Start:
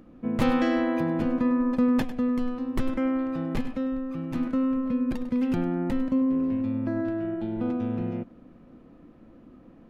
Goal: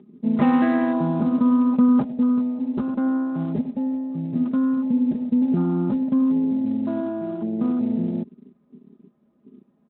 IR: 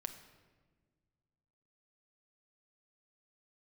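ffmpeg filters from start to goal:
-af "afwtdn=0.0178,lowpass=frequency=1600:poles=1,aecho=1:1:4.9:0.83,volume=3dB" -ar 8000 -c:a libspeex -b:a 24k

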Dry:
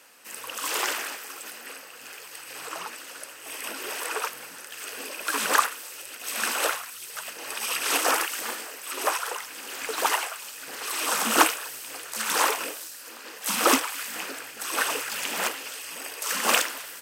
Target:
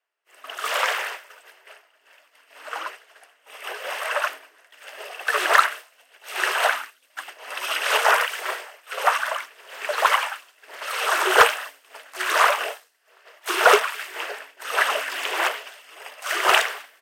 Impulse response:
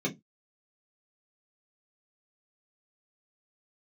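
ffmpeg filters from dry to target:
-af "afreqshift=150,bass=frequency=250:gain=-2,treble=frequency=4000:gain=-13,agate=range=-33dB:threshold=-34dB:ratio=3:detection=peak,asoftclip=type=hard:threshold=-11.5dB,volume=7dB"

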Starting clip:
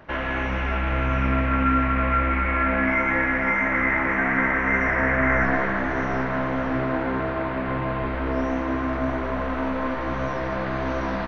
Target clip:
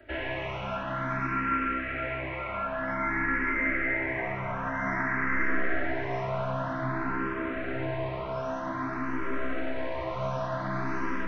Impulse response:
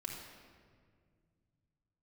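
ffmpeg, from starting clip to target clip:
-filter_complex "[0:a]acrossover=split=170|1000[link_01][link_02][link_03];[link_01]acompressor=threshold=-35dB:ratio=4[link_04];[link_02]acompressor=threshold=-27dB:ratio=4[link_05];[link_03]acompressor=threshold=-25dB:ratio=4[link_06];[link_04][link_05][link_06]amix=inputs=3:normalize=0[link_07];[1:a]atrim=start_sample=2205,atrim=end_sample=6615[link_08];[link_07][link_08]afir=irnorm=-1:irlink=0,asplit=2[link_09][link_10];[link_10]afreqshift=0.52[link_11];[link_09][link_11]amix=inputs=2:normalize=1"

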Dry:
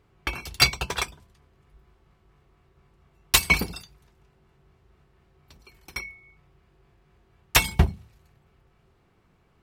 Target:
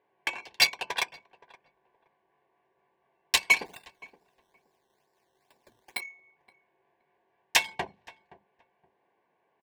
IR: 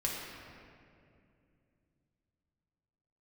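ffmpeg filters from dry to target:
-filter_complex "[0:a]highpass=640,alimiter=limit=-7.5dB:level=0:latency=1:release=315,adynamicsmooth=sensitivity=3:basefreq=1700,asplit=3[link_01][link_02][link_03];[link_01]afade=type=out:start_time=3.65:duration=0.02[link_04];[link_02]acrusher=samples=13:mix=1:aa=0.000001:lfo=1:lforange=13:lforate=2.3,afade=type=in:start_time=3.65:duration=0.02,afade=type=out:start_time=5.99:duration=0.02[link_05];[link_03]afade=type=in:start_time=5.99:duration=0.02[link_06];[link_04][link_05][link_06]amix=inputs=3:normalize=0,asuperstop=centerf=1300:order=4:qfactor=3.4,asplit=2[link_07][link_08];[link_08]adelay=521,lowpass=frequency=990:poles=1,volume=-19dB,asplit=2[link_09][link_10];[link_10]adelay=521,lowpass=frequency=990:poles=1,volume=0.25[link_11];[link_07][link_09][link_11]amix=inputs=3:normalize=0,volume=1.5dB"

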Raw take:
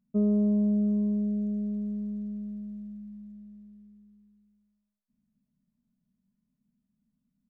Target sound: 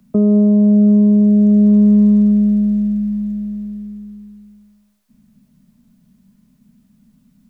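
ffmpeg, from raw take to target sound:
ffmpeg -i in.wav -filter_complex "[0:a]asettb=1/sr,asplit=3[link_01][link_02][link_03];[link_01]atrim=end=1.214[link_04];[link_02]atrim=start=1.21:end=2.32,asetpts=PTS-STARTPTS,afade=type=in:duration=0.004:curve=qsin,afade=type=out:start_time=1.106:duration=0.004:curve=qsin,equalizer=frequency=1100:width_type=o:width=0.4:gain=6.5[link_05];[link_03]atrim=start=2.316[link_06];[link_04][link_05]acrossfade=duration=0.004:curve1=hsin:curve2=qsin[link_07];[link_07][link_06]acrossfade=duration=0.004:curve1=qsin:curve2=hsin,acrossover=split=120|270|620[link_08][link_09][link_10][link_11];[link_08]acompressor=threshold=-55dB:ratio=6[link_12];[link_12][link_09][link_10][link_11]amix=inputs=4:normalize=0,alimiter=level_in=29dB:limit=-1dB:release=50:level=0:latency=1,volume=-5dB" out.wav

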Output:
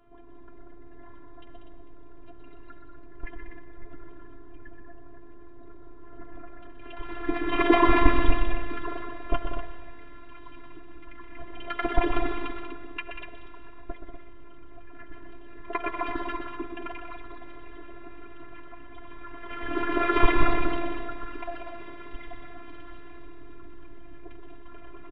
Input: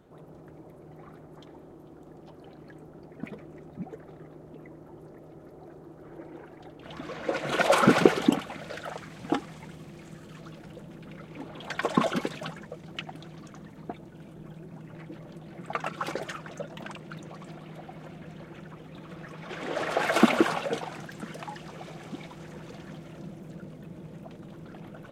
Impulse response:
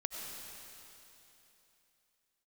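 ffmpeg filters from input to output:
-filter_complex "[0:a]asplit=2[link_01][link_02];[1:a]atrim=start_sample=2205,asetrate=57330,aresample=44100,lowpass=3300[link_03];[link_02][link_03]afir=irnorm=-1:irlink=0,volume=-3.5dB[link_04];[link_01][link_04]amix=inputs=2:normalize=0,highpass=frequency=240:width_type=q:width=0.5412,highpass=frequency=240:width_type=q:width=1.307,lowpass=frequency=3500:width_type=q:width=0.5176,lowpass=frequency=3500:width_type=q:width=0.7071,lowpass=frequency=3500:width_type=q:width=1.932,afreqshift=-250,afftfilt=real='hypot(re,im)*cos(PI*b)':imag='0':win_size=512:overlap=0.75,aecho=1:1:7.1:0.47,aecho=1:1:125.4|189.5|244.9:0.398|0.355|0.355,volume=3.5dB"

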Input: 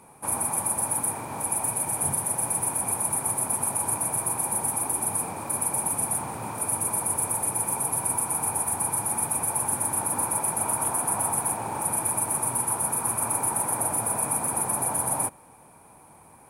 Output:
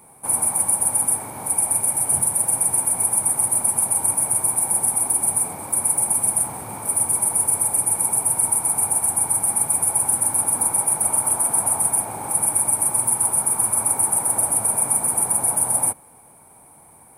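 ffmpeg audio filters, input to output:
ffmpeg -i in.wav -af "aexciter=amount=3.1:drive=5.1:freq=9500,asetrate=42336,aresample=44100" out.wav

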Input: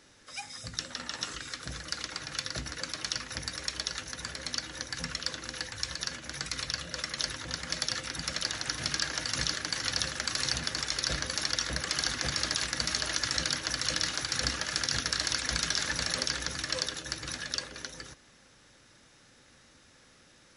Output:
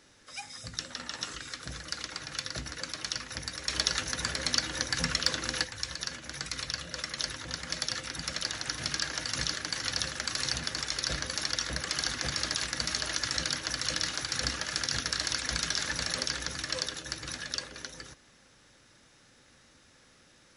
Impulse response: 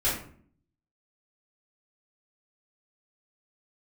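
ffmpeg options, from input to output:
-filter_complex "[0:a]asplit=3[link_01][link_02][link_03];[link_01]afade=type=out:start_time=3.68:duration=0.02[link_04];[link_02]acontrast=89,afade=type=in:start_time=3.68:duration=0.02,afade=type=out:start_time=5.63:duration=0.02[link_05];[link_03]afade=type=in:start_time=5.63:duration=0.02[link_06];[link_04][link_05][link_06]amix=inputs=3:normalize=0,volume=-1dB"

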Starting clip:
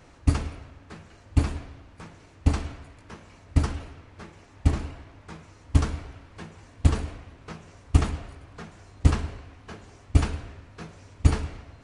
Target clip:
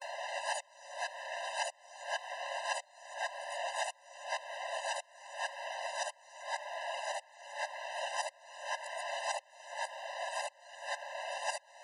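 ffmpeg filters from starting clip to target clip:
ffmpeg -i in.wav -af "areverse,acompressor=threshold=-44dB:ratio=3,afftfilt=real='re*eq(mod(floor(b*sr/1024/520),2),1)':imag='im*eq(mod(floor(b*sr/1024/520),2),1)':win_size=1024:overlap=0.75,volume=17.5dB" out.wav

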